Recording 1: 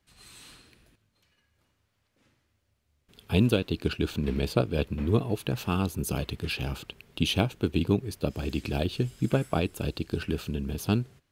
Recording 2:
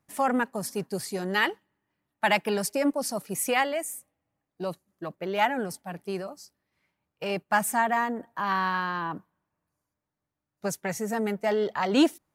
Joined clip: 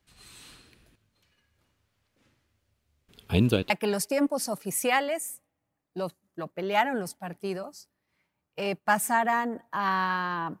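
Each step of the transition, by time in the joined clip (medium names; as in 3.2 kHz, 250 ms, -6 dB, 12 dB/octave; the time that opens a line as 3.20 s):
recording 1
3.70 s: go over to recording 2 from 2.34 s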